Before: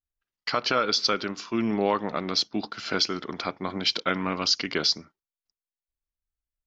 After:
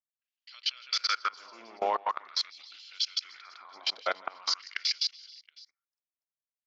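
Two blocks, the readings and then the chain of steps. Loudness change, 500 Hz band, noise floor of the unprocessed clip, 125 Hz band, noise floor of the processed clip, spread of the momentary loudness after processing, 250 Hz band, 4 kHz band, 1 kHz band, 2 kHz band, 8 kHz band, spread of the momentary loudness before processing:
-5.0 dB, -10.5 dB, under -85 dBFS, under -30 dB, under -85 dBFS, 20 LU, -27.5 dB, -4.5 dB, -4.0 dB, -6.5 dB, n/a, 8 LU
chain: tapped delay 0.158/0.165/0.293/0.436/0.483/0.723 s -4/-19.5/-15.5/-17.5/-18.5/-19 dB; LFO high-pass sine 0.43 Hz 660–3200 Hz; level quantiser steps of 23 dB; gain -4 dB

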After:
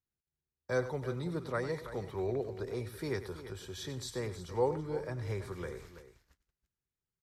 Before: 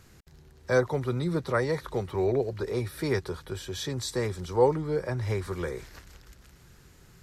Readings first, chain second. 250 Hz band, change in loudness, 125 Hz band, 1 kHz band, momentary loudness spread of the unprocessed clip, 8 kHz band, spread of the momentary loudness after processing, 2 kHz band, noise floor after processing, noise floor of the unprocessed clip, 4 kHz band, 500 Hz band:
-8.0 dB, -8.0 dB, -8.0 dB, -8.0 dB, 12 LU, -8.0 dB, 11 LU, -8.0 dB, under -85 dBFS, -56 dBFS, -8.0 dB, -8.0 dB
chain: gate -46 dBFS, range -32 dB; on a send: tapped delay 96/330 ms -13/-13 dB; on the sum: gain -8.5 dB

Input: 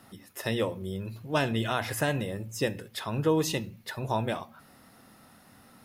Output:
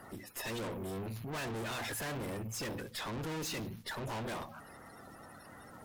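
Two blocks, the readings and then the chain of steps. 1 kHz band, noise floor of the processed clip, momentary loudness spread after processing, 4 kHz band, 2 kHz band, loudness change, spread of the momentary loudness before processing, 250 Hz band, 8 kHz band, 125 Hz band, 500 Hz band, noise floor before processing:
-8.5 dB, -54 dBFS, 15 LU, -6.5 dB, -7.0 dB, -9.0 dB, 10 LU, -9.5 dB, -4.0 dB, -9.5 dB, -11.0 dB, -57 dBFS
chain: bin magnitudes rounded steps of 30 dB; tube stage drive 43 dB, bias 0.45; gain +5.5 dB

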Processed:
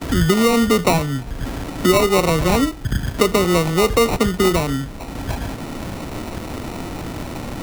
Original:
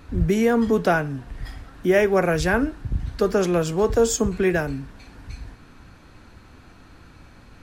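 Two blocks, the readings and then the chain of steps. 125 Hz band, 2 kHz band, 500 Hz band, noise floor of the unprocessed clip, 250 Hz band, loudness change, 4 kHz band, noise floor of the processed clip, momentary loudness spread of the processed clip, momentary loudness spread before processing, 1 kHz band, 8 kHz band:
+6.0 dB, +2.0 dB, +2.5 dB, -49 dBFS, +5.0 dB, +2.5 dB, +12.5 dB, -31 dBFS, 14 LU, 19 LU, +6.5 dB, +5.0 dB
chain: sample-and-hold 27×; gate with hold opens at -41 dBFS; three-band squash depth 70%; gain +4 dB

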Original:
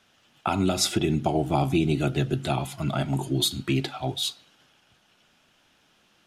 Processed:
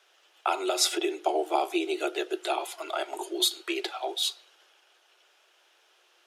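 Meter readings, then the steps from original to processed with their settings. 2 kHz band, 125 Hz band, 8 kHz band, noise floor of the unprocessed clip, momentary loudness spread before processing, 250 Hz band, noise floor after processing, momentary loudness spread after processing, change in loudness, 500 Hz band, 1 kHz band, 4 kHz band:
0.0 dB, under -40 dB, 0.0 dB, -64 dBFS, 6 LU, -8.5 dB, -65 dBFS, 8 LU, -3.0 dB, -0.5 dB, 0.0 dB, 0.0 dB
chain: steep high-pass 340 Hz 96 dB/oct

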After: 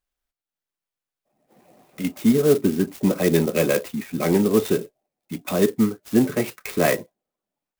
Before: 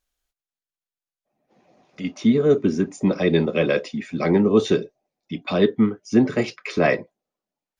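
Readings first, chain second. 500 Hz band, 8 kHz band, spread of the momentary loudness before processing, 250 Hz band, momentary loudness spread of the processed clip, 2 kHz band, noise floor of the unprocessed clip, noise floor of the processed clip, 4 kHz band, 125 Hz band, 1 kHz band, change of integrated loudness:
-0.5 dB, n/a, 10 LU, -0.5 dB, 9 LU, -2.0 dB, under -85 dBFS, under -85 dBFS, -1.5 dB, -0.5 dB, -1.0 dB, -0.5 dB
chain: AGC gain up to 9 dB; clock jitter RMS 0.053 ms; gain -5 dB

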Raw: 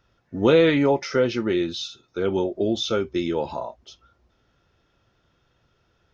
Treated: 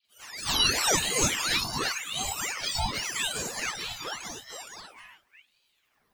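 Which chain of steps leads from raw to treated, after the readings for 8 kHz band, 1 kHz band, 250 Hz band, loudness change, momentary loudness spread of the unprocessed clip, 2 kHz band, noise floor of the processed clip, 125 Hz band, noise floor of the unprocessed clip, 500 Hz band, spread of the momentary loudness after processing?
n/a, -1.0 dB, -16.0 dB, -4.5 dB, 15 LU, +1.5 dB, -72 dBFS, -7.5 dB, -67 dBFS, -17.0 dB, 18 LU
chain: spectrum mirrored in octaves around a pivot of 1300 Hz; dispersion highs, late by 49 ms, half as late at 2800 Hz; reverse echo 0.265 s -17.5 dB; echoes that change speed 0.245 s, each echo -1 st, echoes 3; ring modulator with a swept carrier 2000 Hz, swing 80%, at 0.89 Hz; gain -2 dB

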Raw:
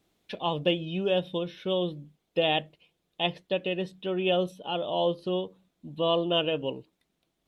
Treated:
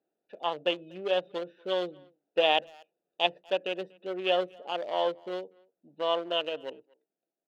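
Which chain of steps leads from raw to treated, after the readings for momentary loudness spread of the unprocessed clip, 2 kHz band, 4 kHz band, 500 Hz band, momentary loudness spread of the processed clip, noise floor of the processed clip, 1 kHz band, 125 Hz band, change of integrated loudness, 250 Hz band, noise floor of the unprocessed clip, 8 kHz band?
8 LU, +0.5 dB, -1.5 dB, -2.0 dB, 12 LU, under -85 dBFS, +1.0 dB, -17.5 dB, -2.0 dB, -8.5 dB, -78 dBFS, n/a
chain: Wiener smoothing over 41 samples; HPF 630 Hz 12 dB/oct; high shelf 2900 Hz -8.5 dB; vocal rider 2 s; speakerphone echo 0.24 s, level -26 dB; gain +4 dB

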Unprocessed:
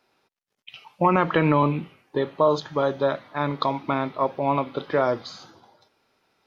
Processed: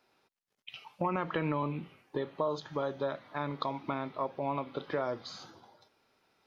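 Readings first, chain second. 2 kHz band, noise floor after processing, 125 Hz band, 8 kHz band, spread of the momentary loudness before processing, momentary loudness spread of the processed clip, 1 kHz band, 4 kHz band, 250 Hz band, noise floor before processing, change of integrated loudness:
-11.5 dB, -83 dBFS, -11.5 dB, n/a, 8 LU, 15 LU, -11.5 dB, -9.0 dB, -11.5 dB, -79 dBFS, -11.5 dB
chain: compressor 2:1, threshold -32 dBFS, peak gain reduction 10 dB; gain -3.5 dB

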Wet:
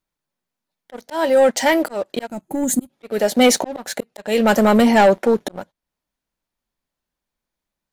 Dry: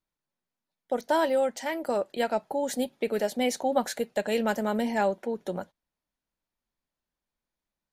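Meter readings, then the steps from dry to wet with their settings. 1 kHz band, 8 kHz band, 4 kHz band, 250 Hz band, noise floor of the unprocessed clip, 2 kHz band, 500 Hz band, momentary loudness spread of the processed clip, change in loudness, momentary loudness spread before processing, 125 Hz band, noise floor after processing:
+9.0 dB, +14.5 dB, +12.0 dB, +12.5 dB, under -85 dBFS, +11.0 dB, +9.5 dB, 16 LU, +11.5 dB, 8 LU, +12.0 dB, -85 dBFS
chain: auto swell 0.431 s; sample leveller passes 2; spectral gain 2.27–2.9, 350–6200 Hz -14 dB; gain +9 dB

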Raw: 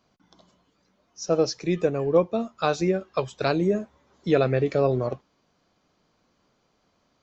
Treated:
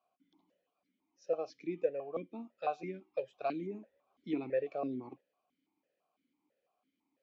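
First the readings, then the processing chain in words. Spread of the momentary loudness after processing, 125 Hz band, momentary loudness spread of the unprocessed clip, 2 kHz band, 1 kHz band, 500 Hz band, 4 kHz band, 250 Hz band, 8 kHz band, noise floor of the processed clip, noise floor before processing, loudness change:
14 LU, -24.0 dB, 10 LU, -16.5 dB, -10.5 dB, -14.0 dB, -23.5 dB, -14.0 dB, n/a, under -85 dBFS, -70 dBFS, -14.0 dB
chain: vowel sequencer 6 Hz; gain -3.5 dB

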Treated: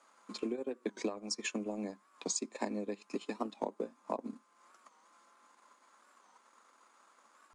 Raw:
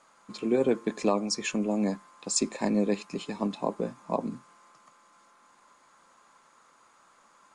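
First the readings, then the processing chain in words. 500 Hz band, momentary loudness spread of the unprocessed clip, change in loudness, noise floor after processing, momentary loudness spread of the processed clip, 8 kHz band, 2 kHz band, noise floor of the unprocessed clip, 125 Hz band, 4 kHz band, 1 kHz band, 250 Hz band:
-10.0 dB, 10 LU, -10.0 dB, -69 dBFS, 8 LU, -7.0 dB, -7.0 dB, -62 dBFS, -15.0 dB, -7.5 dB, -8.0 dB, -11.0 dB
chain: steep high-pass 210 Hz 48 dB/oct; compressor 8:1, threshold -31 dBFS, peak gain reduction 12 dB; transient shaper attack +5 dB, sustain -8 dB; record warp 45 rpm, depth 160 cents; gain -4.5 dB

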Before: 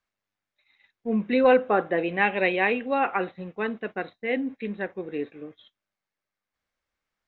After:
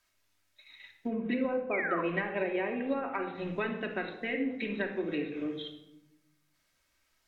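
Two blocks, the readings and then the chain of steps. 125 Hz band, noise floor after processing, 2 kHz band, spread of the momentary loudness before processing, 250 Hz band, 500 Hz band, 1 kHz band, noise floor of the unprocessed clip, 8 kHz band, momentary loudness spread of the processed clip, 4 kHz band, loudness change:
-4.0 dB, -75 dBFS, -7.5 dB, 14 LU, -4.5 dB, -8.5 dB, -11.0 dB, under -85 dBFS, n/a, 10 LU, -4.5 dB, -8.0 dB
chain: treble ducked by the level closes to 1000 Hz, closed at -19 dBFS; high shelf 2700 Hz +11.5 dB; compressor 8:1, threshold -35 dBFS, peak gain reduction 20.5 dB; painted sound fall, 1.71–2.01, 970–2500 Hz -39 dBFS; shoebox room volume 3200 m³, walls furnished, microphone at 2.8 m; gain +3.5 dB

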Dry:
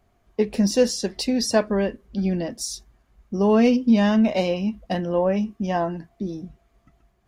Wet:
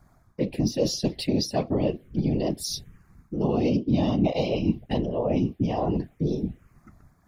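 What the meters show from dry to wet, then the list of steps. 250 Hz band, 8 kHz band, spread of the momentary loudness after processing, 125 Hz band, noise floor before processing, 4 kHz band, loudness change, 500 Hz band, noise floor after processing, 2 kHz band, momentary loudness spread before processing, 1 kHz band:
-4.0 dB, -5.5 dB, 7 LU, +2.5 dB, -65 dBFS, -2.5 dB, -4.0 dB, -5.0 dB, -61 dBFS, -10.0 dB, 14 LU, -5.0 dB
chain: reverse; compressor 6:1, threshold -29 dBFS, peak gain reduction 15.5 dB; reverse; envelope phaser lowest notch 480 Hz, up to 1600 Hz, full sweep at -28.5 dBFS; whisperiser; gain +7.5 dB

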